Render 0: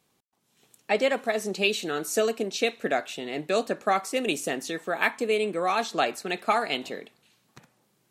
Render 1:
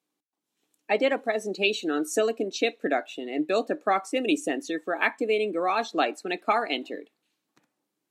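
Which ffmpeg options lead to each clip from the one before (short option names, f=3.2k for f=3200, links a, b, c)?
-af "highpass=220,afftdn=nr=13:nf=-35,equalizer=f=300:w=6.5:g=12.5"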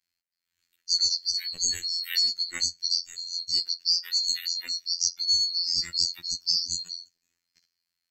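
-af "afftfilt=real='real(if(lt(b,736),b+184*(1-2*mod(floor(b/184),2)),b),0)':imag='imag(if(lt(b,736),b+184*(1-2*mod(floor(b/184),2)),b),0)':win_size=2048:overlap=0.75,afftfilt=real='hypot(re,im)*cos(PI*b)':imag='0':win_size=2048:overlap=0.75,equalizer=f=500:t=o:w=1:g=-8,equalizer=f=1k:t=o:w=1:g=-4,equalizer=f=2k:t=o:w=1:g=8,volume=1dB"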